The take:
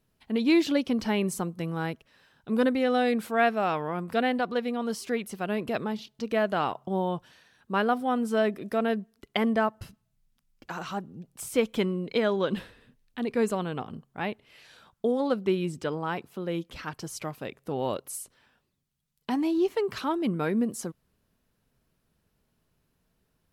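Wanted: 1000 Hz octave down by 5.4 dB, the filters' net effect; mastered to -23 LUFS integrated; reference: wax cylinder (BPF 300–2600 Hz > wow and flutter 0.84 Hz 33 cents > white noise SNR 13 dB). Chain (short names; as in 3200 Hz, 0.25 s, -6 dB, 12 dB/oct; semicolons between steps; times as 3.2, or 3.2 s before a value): BPF 300–2600 Hz; bell 1000 Hz -8 dB; wow and flutter 0.84 Hz 33 cents; white noise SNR 13 dB; gain +10.5 dB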